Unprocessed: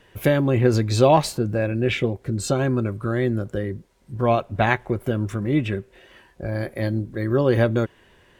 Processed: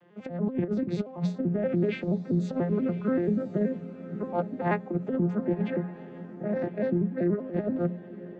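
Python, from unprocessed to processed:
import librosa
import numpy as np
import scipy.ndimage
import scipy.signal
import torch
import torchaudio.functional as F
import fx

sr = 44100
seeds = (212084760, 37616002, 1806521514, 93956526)

y = fx.vocoder_arp(x, sr, chord='minor triad', root=53, every_ms=96)
y = fx.lowpass(y, sr, hz=1500.0, slope=6)
y = fx.hum_notches(y, sr, base_hz=60, count=4)
y = fx.over_compress(y, sr, threshold_db=-24.0, ratio=-0.5)
y = fx.echo_diffused(y, sr, ms=1040, feedback_pct=43, wet_db=-14.5)
y = y * librosa.db_to_amplitude(-2.0)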